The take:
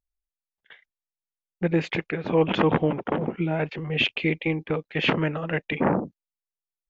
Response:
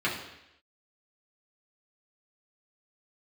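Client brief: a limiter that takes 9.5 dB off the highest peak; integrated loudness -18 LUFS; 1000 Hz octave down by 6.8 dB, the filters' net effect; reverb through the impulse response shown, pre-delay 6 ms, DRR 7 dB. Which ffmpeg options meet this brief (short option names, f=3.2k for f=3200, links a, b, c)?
-filter_complex "[0:a]equalizer=f=1k:t=o:g=-9,alimiter=limit=-18dB:level=0:latency=1,asplit=2[a][b];[1:a]atrim=start_sample=2205,adelay=6[c];[b][c]afir=irnorm=-1:irlink=0,volume=-18dB[d];[a][d]amix=inputs=2:normalize=0,volume=10.5dB"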